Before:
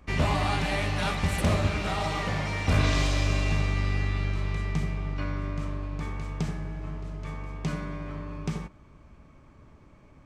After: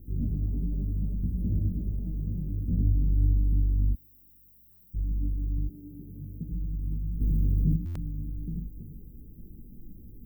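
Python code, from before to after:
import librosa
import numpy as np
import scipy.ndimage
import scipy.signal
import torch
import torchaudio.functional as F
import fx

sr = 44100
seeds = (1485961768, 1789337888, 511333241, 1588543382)

y = x + 10.0 ** (-9.0 / 20.0) * np.pad(x, (int(325 * sr / 1000.0), 0))[:len(x)]
y = fx.dmg_noise_colour(y, sr, seeds[0], colour='pink', level_db=-40.0)
y = fx.differentiator(y, sr, at=(3.93, 4.94))
y = fx.highpass(y, sr, hz=fx.line((5.66, 230.0), (6.49, 87.0)), slope=12, at=(5.66, 6.49), fade=0.02)
y = fx.chorus_voices(y, sr, voices=4, hz=1.5, base_ms=19, depth_ms=3.0, mix_pct=50)
y = scipy.signal.sosfilt(scipy.signal.cheby2(4, 70, [1100.0, 6000.0], 'bandstop', fs=sr, output='sos'), y)
y = fx.high_shelf(y, sr, hz=6800.0, db=-6.5)
y = fx.buffer_glitch(y, sr, at_s=(4.7, 7.85), block=512, repeats=8)
y = fx.env_flatten(y, sr, amount_pct=70, at=(7.2, 7.75), fade=0.02)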